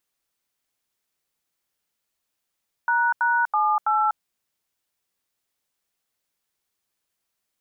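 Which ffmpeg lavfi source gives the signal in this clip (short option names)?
-f lavfi -i "aevalsrc='0.0944*clip(min(mod(t,0.328),0.245-mod(t,0.328))/0.002,0,1)*(eq(floor(t/0.328),0)*(sin(2*PI*941*mod(t,0.328))+sin(2*PI*1477*mod(t,0.328)))+eq(floor(t/0.328),1)*(sin(2*PI*941*mod(t,0.328))+sin(2*PI*1477*mod(t,0.328)))+eq(floor(t/0.328),2)*(sin(2*PI*852*mod(t,0.328))+sin(2*PI*1209*mod(t,0.328)))+eq(floor(t/0.328),3)*(sin(2*PI*852*mod(t,0.328))+sin(2*PI*1336*mod(t,0.328))))':d=1.312:s=44100"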